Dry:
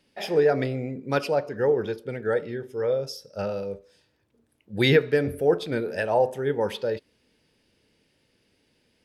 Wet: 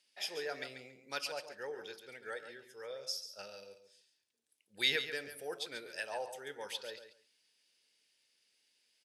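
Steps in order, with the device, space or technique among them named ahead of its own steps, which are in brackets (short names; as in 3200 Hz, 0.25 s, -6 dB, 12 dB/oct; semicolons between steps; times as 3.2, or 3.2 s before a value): 3.42–4.75 bell 1100 Hz -5 dB 2 oct; piezo pickup straight into a mixer (LPF 8300 Hz 12 dB/oct; differentiator); feedback echo 0.139 s, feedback 17%, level -10 dB; gain +2 dB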